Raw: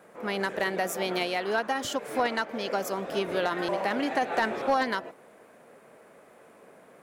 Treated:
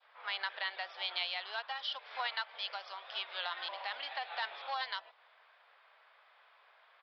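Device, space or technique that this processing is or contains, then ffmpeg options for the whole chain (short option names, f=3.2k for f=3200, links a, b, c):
musical greeting card: -filter_complex "[0:a]asettb=1/sr,asplit=3[a][b][c];[a]atrim=end=2.304[d];[b]atrim=start=2.3:end=3.38,asetpts=PTS-STARTPTS,afade=t=in:d=0.004:c=qsin,afade=t=out:st=1.076:d=0.004:c=qsin,highpass=f=370:p=1[e];[c]atrim=start=3.376[f];[d][e]acrossfade=d=0.004:c1=hsin:c2=qsin[g];[g][f]acrossfade=d=0.004:c1=qsin:c2=hsin,aresample=11025,aresample=44100,highpass=f=890:w=0.5412,highpass=f=890:w=1.3066,equalizer=f=3.4k:t=o:w=0.48:g=8.5,adynamicequalizer=threshold=0.00708:dfrequency=1500:dqfactor=0.84:tfrequency=1500:tqfactor=0.84:attack=5:release=100:ratio=0.375:range=3.5:mode=cutabove:tftype=bell,volume=-4.5dB"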